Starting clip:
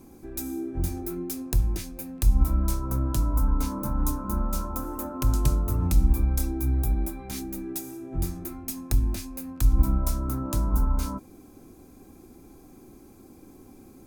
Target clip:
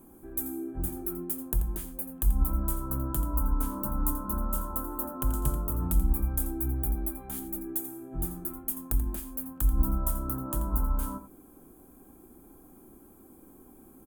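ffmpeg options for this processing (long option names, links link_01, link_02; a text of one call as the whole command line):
ffmpeg -i in.wav -filter_complex "[0:a]highshelf=frequency=2200:width_type=q:width=1.5:gain=-10,aexciter=amount=6.1:drive=5.2:freq=7700,equalizer=frequency=100:width_type=o:width=0.33:gain=-11,equalizer=frequency=2000:width_type=o:width=0.33:gain=-5,equalizer=frequency=3150:width_type=o:width=0.33:gain=12,asplit=2[link_01][link_02];[link_02]aecho=0:1:85:0.251[link_03];[link_01][link_03]amix=inputs=2:normalize=0,volume=-4.5dB" out.wav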